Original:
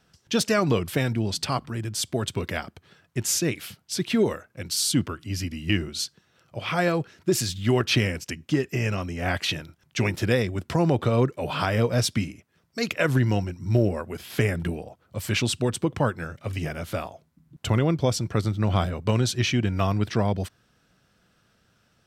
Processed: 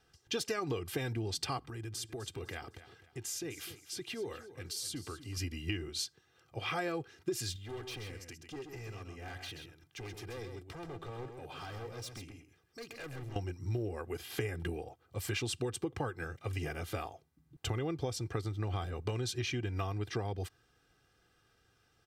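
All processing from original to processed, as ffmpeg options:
ffmpeg -i in.wav -filter_complex "[0:a]asettb=1/sr,asplit=3[link_01][link_02][link_03];[link_01]atrim=end=1.674[link_04];[link_02]atrim=start=1.67:end=5.37,asetpts=PTS-STARTPTS,afade=type=in:duration=0.004:curve=qsin,afade=type=out:start_time=3.696:duration=0.004:curve=qsin,acompressor=threshold=-34dB:ratio=3:attack=3.2:release=140:knee=1:detection=peak,aecho=1:1:254|508|762:0.188|0.064|0.0218,atrim=end_sample=163170[link_05];[link_03]atrim=start=5.366[link_06];[link_04][link_05]acrossfade=duration=0.004:curve1=hsin:curve2=qsin[link_07];[link_07][link_06]acrossfade=duration=0.004:curve1=qsin:curve2=hsin,asettb=1/sr,asplit=3[link_08][link_09][link_10];[link_08]atrim=end=7.564[link_11];[link_09]atrim=start=7.56:end=13.36,asetpts=PTS-STARTPTS,afade=type=in:duration=0.004:curve=qsin,afade=type=out:start_time=5.796:duration=0.004:curve=qsin,asoftclip=type=hard:threshold=-23.5dB,acompressor=threshold=-47dB:ratio=2:attack=3.2:release=140:knee=1:detection=peak,aecho=1:1:131:0.447,atrim=end_sample=255780[link_12];[link_10]atrim=start=13.356[link_13];[link_11][link_12]acrossfade=duration=0.004:curve1=hsin:curve2=qsin[link_14];[link_14][link_13]acrossfade=duration=0.004:curve1=qsin:curve2=hsin,aecho=1:1:2.5:0.65,acompressor=threshold=-25dB:ratio=6,volume=-7dB" out.wav

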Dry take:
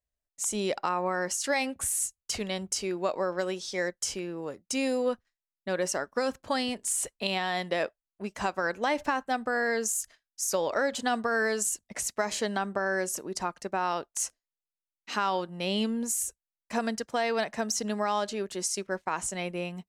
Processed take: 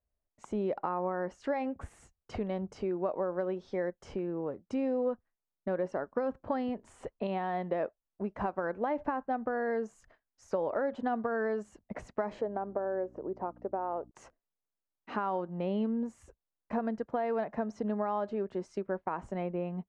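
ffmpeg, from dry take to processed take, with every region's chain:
ffmpeg -i in.wav -filter_complex "[0:a]asettb=1/sr,asplit=3[link_01][link_02][link_03];[link_01]atrim=end=12.414[link_04];[link_02]atrim=start=12.41:end=14.11,asetpts=PTS-STARTPTS,afade=type=in:duration=0.004:curve=qsin,afade=type=out:start_time=1.696:duration=0.004:curve=qsin,aeval=exprs='val(0)+0.00562*(sin(2*PI*60*n/s)+sin(2*PI*2*60*n/s)/2+sin(2*PI*3*60*n/s)/3+sin(2*PI*4*60*n/s)/4+sin(2*PI*5*60*n/s)/5)':channel_layout=same,bandpass=frequency=540:width_type=q:width=1.1[link_05];[link_03]atrim=start=14.106[link_06];[link_04][link_05]acrossfade=duration=0.004:curve1=hsin:curve2=qsin[link_07];[link_07][link_06]acrossfade=duration=0.004:curve1=qsin:curve2=hsin,lowpass=1000,acompressor=threshold=-39dB:ratio=2,volume=5dB" out.wav

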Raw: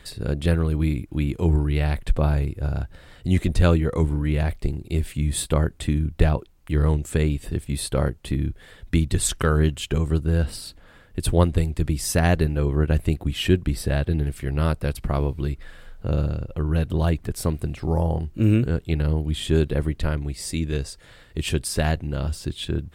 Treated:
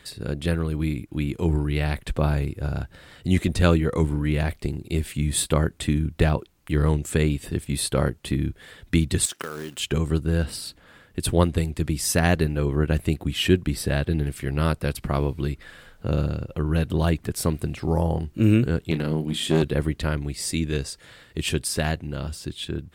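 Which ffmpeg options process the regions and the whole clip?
ffmpeg -i in.wav -filter_complex "[0:a]asettb=1/sr,asplit=3[link_01][link_02][link_03];[link_01]atrim=end=9.254[link_04];[link_02]atrim=start=9.25:end=9.8,asetpts=PTS-STARTPTS,afade=type=in:duration=0.004:curve=qsin,afade=type=out:start_time=0.546:duration=0.004:curve=qsin,highpass=260,acrusher=bits=3:mode=log:mix=0:aa=0.000001,acompressor=threshold=-29dB:ratio=10:attack=3.2:release=140:knee=1:detection=peak[link_05];[link_03]atrim=start=9.796[link_06];[link_04][link_05]acrossfade=duration=0.004:curve1=hsin:curve2=qsin[link_07];[link_07][link_06]acrossfade=duration=0.004:curve1=qsin:curve2=hsin,asettb=1/sr,asplit=3[link_08][link_09][link_10];[link_08]atrim=end=18.914[link_11];[link_09]atrim=start=18.91:end=19.63,asetpts=PTS-STARTPTS,afade=type=in:duration=0.004:curve=qsin,afade=type=out:start_time=0.716:duration=0.004:curve=qsin,lowshelf=frequency=130:width_type=q:width=1.5:gain=-11,aeval=exprs='clip(val(0),-1,0.0668)':channel_layout=same,asplit=2[link_12][link_13];[link_13]adelay=31,volume=-11.5dB[link_14];[link_12][link_14]amix=inputs=2:normalize=0,atrim=end_sample=31752[link_15];[link_10]atrim=start=19.626[link_16];[link_11][link_15]acrossfade=duration=0.004:curve1=hsin:curve2=qsin[link_17];[link_17][link_16]acrossfade=duration=0.004:curve1=qsin:curve2=hsin,highpass=frequency=140:poles=1,dynaudnorm=framelen=250:gausssize=13:maxgain=3.5dB,equalizer=frequency=650:width_type=o:width=1.5:gain=-3" out.wav

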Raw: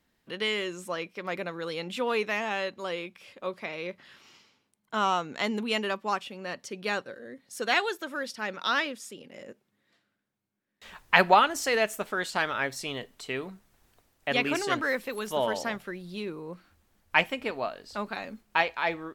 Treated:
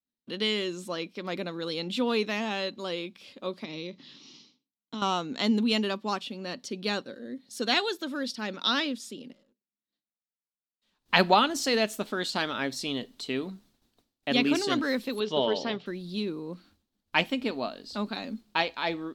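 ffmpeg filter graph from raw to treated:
ffmpeg -i in.wav -filter_complex "[0:a]asettb=1/sr,asplit=3[link_01][link_02][link_03];[link_01]atrim=end=3.644[link_04];[link_02]atrim=start=3.64:end=5.02,asetpts=PTS-STARTPTS,afade=type=in:duration=0.004:curve=qsin,afade=type=out:start_time=1.376:duration=0.004:curve=qsin,acompressor=threshold=-35dB:ratio=4:attack=3.2:release=140:knee=1:detection=peak,highpass=110,equalizer=frequency=150:width_type=q:width=4:gain=9,equalizer=frequency=290:width_type=q:width=4:gain=7,equalizer=frequency=670:width_type=q:width=4:gain=-6,equalizer=frequency=1500:width_type=q:width=4:gain=-9,equalizer=frequency=3800:width_type=q:width=4:gain=3,equalizer=frequency=5900:width_type=q:width=4:gain=7,lowpass=frequency=6600:width=0.5412,lowpass=frequency=6600:width=1.3066[link_05];[link_03]atrim=start=5.016[link_06];[link_04][link_05]acrossfade=duration=0.004:curve1=hsin:curve2=qsin[link_07];[link_07][link_06]acrossfade=duration=0.004:curve1=qsin:curve2=hsin,asettb=1/sr,asplit=3[link_08][link_09][link_10];[link_08]atrim=end=9.324[link_11];[link_09]atrim=start=9.32:end=11.06,asetpts=PTS-STARTPTS,afade=type=in:duration=0.004:curve=qsin,afade=type=out:start_time=1.736:duration=0.004:curve=qsin,acompressor=threshold=-59dB:ratio=3:attack=3.2:release=140:knee=1:detection=peak,aeval=exprs='(tanh(1260*val(0)+0.2)-tanh(0.2))/1260':channel_layout=same[link_12];[link_10]atrim=start=11.056[link_13];[link_11][link_12]acrossfade=duration=0.004:curve1=hsin:curve2=qsin[link_14];[link_14][link_13]acrossfade=duration=0.004:curve1=qsin:curve2=hsin,asettb=1/sr,asplit=3[link_15][link_16][link_17];[link_15]atrim=end=15.204[link_18];[link_16]atrim=start=15.2:end=15.86,asetpts=PTS-STARTPTS,afade=type=in:duration=0.004:curve=qsin,afade=type=out:start_time=0.656:duration=0.004:curve=qsin,highpass=110,equalizer=frequency=140:width_type=q:width=4:gain=6,equalizer=frequency=240:width_type=q:width=4:gain=-6,equalizer=frequency=420:width_type=q:width=4:gain=7,equalizer=frequency=1500:width_type=q:width=4:gain=-3,equalizer=frequency=3000:width_type=q:width=4:gain=5,lowpass=frequency=5000:width=0.5412,lowpass=frequency=5000:width=1.3066,asplit=2[link_19][link_20];[link_20]adelay=12,volume=-13.5dB[link_21];[link_19][link_21]amix=inputs=2:normalize=0,atrim=end_sample=29106[link_22];[link_17]atrim=start=15.856[link_23];[link_18][link_22]acrossfade=duration=0.004:curve1=hsin:curve2=qsin[link_24];[link_24][link_23]acrossfade=duration=0.004:curve1=qsin:curve2=hsin,agate=range=-33dB:threshold=-57dB:ratio=3:detection=peak,equalizer=frequency=250:width_type=o:width=1:gain=12,equalizer=frequency=2000:width_type=o:width=1:gain=-4,equalizer=frequency=4000:width_type=o:width=1:gain=11,volume=-3dB" out.wav

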